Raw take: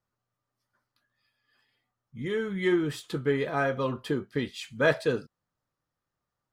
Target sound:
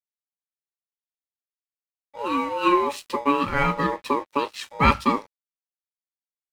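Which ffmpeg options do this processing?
-af "aeval=exprs='val(0)*sin(2*PI*710*n/s)':c=same,aeval=exprs='sgn(val(0))*max(abs(val(0))-0.00188,0)':c=same,volume=2.66"

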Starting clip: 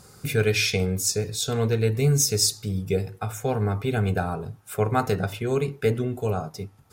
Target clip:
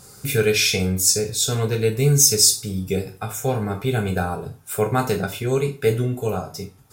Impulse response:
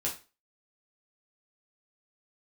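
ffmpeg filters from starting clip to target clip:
-filter_complex "[0:a]asplit=2[s0][s1];[1:a]atrim=start_sample=2205,highshelf=f=4000:g=12[s2];[s1][s2]afir=irnorm=-1:irlink=0,volume=0.531[s3];[s0][s3]amix=inputs=2:normalize=0,volume=0.794"

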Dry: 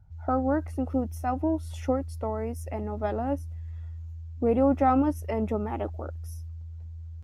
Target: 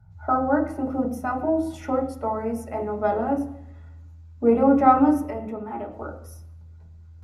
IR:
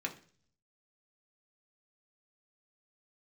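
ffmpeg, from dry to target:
-filter_complex "[0:a]asettb=1/sr,asplit=3[s0][s1][s2];[s0]atrim=end=5.184[s3];[s1]atrim=start=5.18:end=5.92,asetpts=PTS-STARTPTS,afade=t=in:d=0.004:c=qsin,afade=t=out:st=0.736:d=0.004:c=qsin,acompressor=threshold=0.02:ratio=5[s4];[s2]atrim=start=5.916[s5];[s3][s4]acrossfade=d=0.004:c1=hsin:c2=qsin[s6];[s6][s5]acrossfade=d=0.004:c1=qsin:c2=hsin[s7];[1:a]atrim=start_sample=2205,asetrate=25578,aresample=44100[s8];[s7][s8]afir=irnorm=-1:irlink=0"

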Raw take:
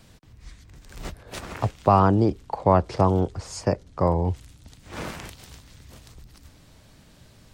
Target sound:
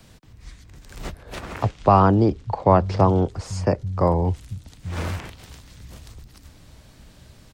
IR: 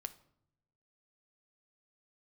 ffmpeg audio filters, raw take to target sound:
-filter_complex "[0:a]asettb=1/sr,asplit=3[s0][s1][s2];[s0]atrim=end=1.634[s3];[s1]atrim=start=1.63:end=3.28,asetpts=PTS-STARTPTS,afade=t=in:d=0.004:c=qsin,afade=t=out:st=1.646:d=0.004:c=qsin,lowpass=6400[s4];[s2]atrim=start=3.276[s5];[s3][s4]acrossfade=d=0.004:c1=hsin:c2=qsin[s6];[s6][s5]acrossfade=d=0.004:c1=qsin:c2=hsin,acrossover=split=140|1200|3600[s7][s8][s9][s10];[s7]aecho=1:1:839:0.596[s11];[s10]alimiter=level_in=2.99:limit=0.0631:level=0:latency=1:release=346,volume=0.335[s12];[s11][s8][s9][s12]amix=inputs=4:normalize=0,volume=1.33"

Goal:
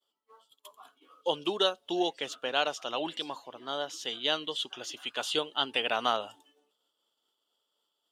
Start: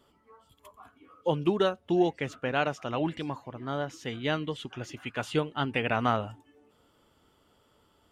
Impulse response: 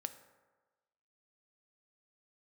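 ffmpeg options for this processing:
-af "agate=range=0.0224:threshold=0.002:ratio=3:detection=peak,highpass=460,highshelf=f=2700:t=q:w=3:g=6"

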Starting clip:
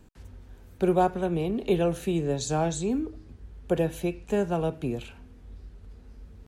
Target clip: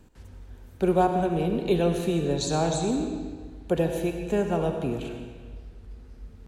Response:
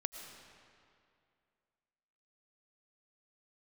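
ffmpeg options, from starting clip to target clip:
-filter_complex "[0:a]asettb=1/sr,asplit=3[s0][s1][s2];[s0]atrim=end=1.594[s3];[s1]atrim=start=1.59:end=3.88,asetpts=PTS-STARTPTS,afade=t=in:d=0.004:c=qsin,afade=t=out:st=2.286:d=0.004:c=qsin,equalizer=f=4100:w=5.6:g=6.5[s4];[s2]atrim=start=3.876[s5];[s3][s4]acrossfade=d=0.004:c1=hsin:c2=qsin[s6];[s6][s5]acrossfade=d=0.004:c1=qsin:c2=hsin[s7];[1:a]atrim=start_sample=2205,asetrate=66150,aresample=44100[s8];[s7][s8]afir=irnorm=-1:irlink=0,volume=1.88"

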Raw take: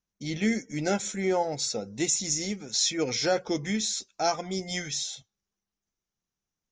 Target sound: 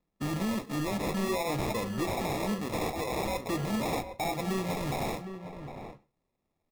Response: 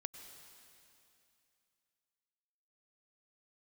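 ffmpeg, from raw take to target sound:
-filter_complex "[0:a]asettb=1/sr,asplit=3[s0][s1][s2];[s0]atrim=end=2.864[s3];[s1]atrim=start=2.86:end=3.46,asetpts=PTS-STARTPTS,afade=t=in:d=0.004:c=qsin,afade=t=out:st=0.596:d=0.004:c=qsin,highpass=740[s4];[s2]atrim=start=3.456[s5];[s3][s4]acrossfade=d=0.004:c1=hsin:c2=qsin[s6];[s6][s5]acrossfade=d=0.004:c1=qsin:c2=hsin,acompressor=threshold=0.0355:ratio=6,alimiter=level_in=1.33:limit=0.0631:level=0:latency=1:release=77,volume=0.75,acrusher=samples=29:mix=1:aa=0.000001,asoftclip=type=hard:threshold=0.0188,flanger=delay=5.5:depth=8.7:regen=-75:speed=0.5:shape=triangular,asplit=2[s7][s8];[s8]adelay=758,volume=0.355,highshelf=f=4000:g=-17.1[s9];[s7][s9]amix=inputs=2:normalize=0,asplit=2[s10][s11];[1:a]atrim=start_sample=2205,atrim=end_sample=6174[s12];[s11][s12]afir=irnorm=-1:irlink=0,volume=0.562[s13];[s10][s13]amix=inputs=2:normalize=0,volume=2.66"

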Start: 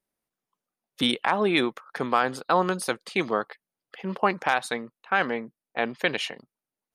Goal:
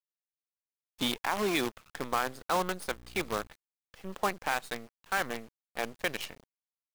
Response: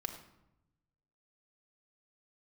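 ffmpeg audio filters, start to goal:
-filter_complex "[0:a]asettb=1/sr,asplit=3[s0][s1][s2];[s0]atrim=end=2.884[s3];[s1]atrim=start=2.88:end=3.48,asetpts=PTS-STARTPTS,afade=t=in:d=0.004:c=qsin,afade=t=out:st=0.596:d=0.004:c=qsin,aeval=exprs='val(0)+0.01*(sin(2*PI*60*n/s)+sin(2*PI*2*60*n/s)/2+sin(2*PI*3*60*n/s)/3+sin(2*PI*4*60*n/s)/4+sin(2*PI*5*60*n/s)/5)':c=same[s4];[s2]atrim=start=3.476[s5];[s3][s4]acrossfade=d=0.004:c1=hsin:c2=qsin[s6];[s6][s5]acrossfade=d=0.004:c1=qsin:c2=hsin,acrusher=bits=5:dc=4:mix=0:aa=0.000001,volume=0.422"

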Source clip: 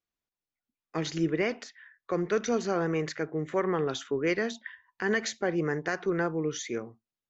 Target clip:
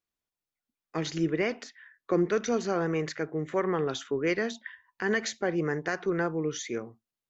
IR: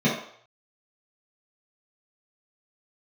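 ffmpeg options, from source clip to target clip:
-filter_complex "[0:a]asettb=1/sr,asplit=3[s0][s1][s2];[s0]atrim=end=1.634[s3];[s1]atrim=start=1.63:end=2.31,asetpts=PTS-STARTPTS,afade=t=in:d=0.004:c=qsin,afade=t=out:st=0.676:d=0.004:c=qsin,equalizer=f=280:w=1.3:g=8[s4];[s2]atrim=start=2.306[s5];[s3][s4]acrossfade=d=0.004:c1=hsin:c2=qsin[s6];[s6][s5]acrossfade=d=0.004:c1=qsin:c2=hsin"

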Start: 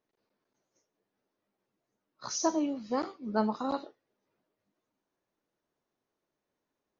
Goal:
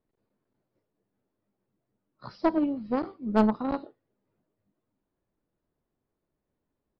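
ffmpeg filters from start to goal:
-filter_complex "[0:a]aemphasis=mode=reproduction:type=riaa,asplit=2[s0][s1];[s1]acrusher=bits=2:mix=0:aa=0.5,volume=0.355[s2];[s0][s2]amix=inputs=2:normalize=0,aresample=11025,aresample=44100,aeval=exprs='0.398*(cos(1*acos(clip(val(0)/0.398,-1,1)))-cos(1*PI/2))+0.0126*(cos(7*acos(clip(val(0)/0.398,-1,1)))-cos(7*PI/2))':c=same"

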